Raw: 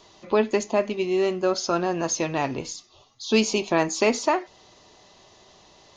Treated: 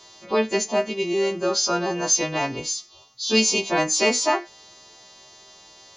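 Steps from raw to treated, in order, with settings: partials quantised in pitch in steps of 2 st

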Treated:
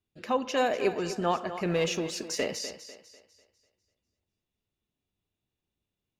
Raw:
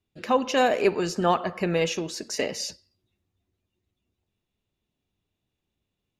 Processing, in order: 1.65–2.59 s: waveshaping leveller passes 1; on a send: thinning echo 248 ms, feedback 40%, high-pass 190 Hz, level -12 dB; on the sum: trim -5.5 dB

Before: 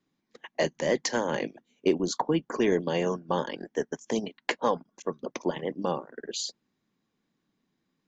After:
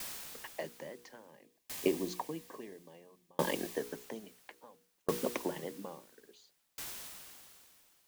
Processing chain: high-pass 56 Hz 12 dB/octave; tone controls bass 0 dB, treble -10 dB; hum notches 60/120/180/240/300/360/420/480 Hz; compression, threshold -30 dBFS, peak gain reduction 11.5 dB; word length cut 8-bit, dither triangular; 1.28–3.80 s: Butterworth band-stop 1.4 kHz, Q 5.5; sawtooth tremolo in dB decaying 0.59 Hz, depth 39 dB; trim +7 dB

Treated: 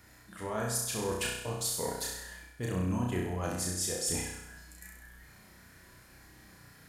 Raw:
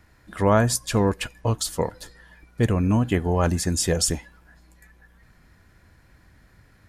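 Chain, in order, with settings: high-pass 100 Hz 6 dB/octave; treble shelf 5.1 kHz +11.5 dB; reverse; compression 12:1, threshold -30 dBFS, peak gain reduction 19.5 dB; reverse; flange 0.97 Hz, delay 2 ms, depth 5.5 ms, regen +74%; in parallel at -12 dB: hard clipper -32.5 dBFS, distortion -14 dB; on the sum: flutter echo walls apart 5.6 m, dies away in 0.86 s

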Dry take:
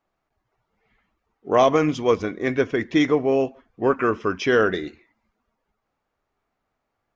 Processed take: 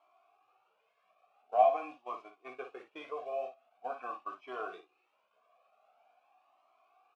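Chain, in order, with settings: one-bit delta coder 64 kbps, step -30.5 dBFS; high-pass 500 Hz 6 dB/octave; gate -27 dBFS, range -18 dB; vowel filter a; treble shelf 4.6 kHz -6.5 dB; early reflections 16 ms -6.5 dB, 55 ms -8 dB; Shepard-style flanger rising 0.45 Hz

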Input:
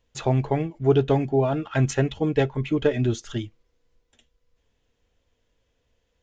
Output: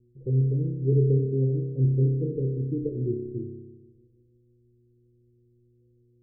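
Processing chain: mains buzz 120 Hz, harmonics 3, -56 dBFS -4 dB/octave; rippled Chebyshev low-pass 510 Hz, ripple 6 dB; spring tank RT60 1.3 s, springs 30 ms, chirp 50 ms, DRR 1.5 dB; trim -4 dB

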